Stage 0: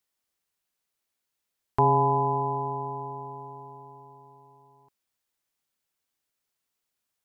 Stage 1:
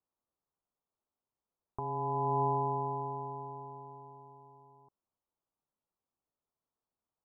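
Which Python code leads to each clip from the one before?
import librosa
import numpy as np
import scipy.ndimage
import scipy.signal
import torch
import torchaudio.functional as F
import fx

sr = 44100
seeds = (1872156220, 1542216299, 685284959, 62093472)

y = fx.over_compress(x, sr, threshold_db=-27.0, ratio=-1.0)
y = scipy.signal.sosfilt(scipy.signal.butter(6, 1200.0, 'lowpass', fs=sr, output='sos'), y)
y = F.gain(torch.from_numpy(y), -4.5).numpy()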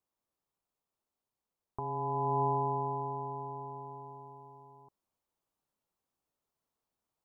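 y = fx.rider(x, sr, range_db=4, speed_s=2.0)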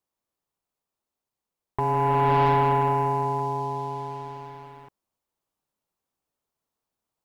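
y = fx.leveller(x, sr, passes=2)
y = F.gain(torch.from_numpy(y), 6.0).numpy()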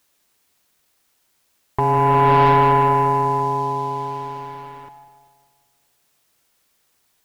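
y = fx.echo_split(x, sr, split_hz=710.0, low_ms=194, high_ms=149, feedback_pct=52, wet_db=-12.0)
y = fx.quant_dither(y, sr, seeds[0], bits=12, dither='triangular')
y = F.gain(torch.from_numpy(y), 6.5).numpy()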